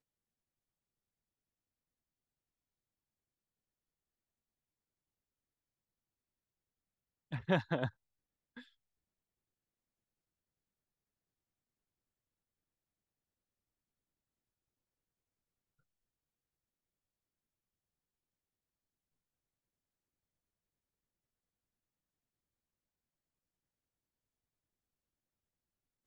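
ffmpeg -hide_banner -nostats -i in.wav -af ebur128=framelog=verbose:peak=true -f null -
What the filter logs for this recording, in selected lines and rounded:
Integrated loudness:
  I:         -36.8 LUFS
  Threshold: -48.7 LUFS
Loudness range:
  LRA:         5.0 LU
  Threshold: -63.4 LUFS
  LRA low:   -47.0 LUFS
  LRA high:  -42.0 LUFS
True peak:
  Peak:      -15.5 dBFS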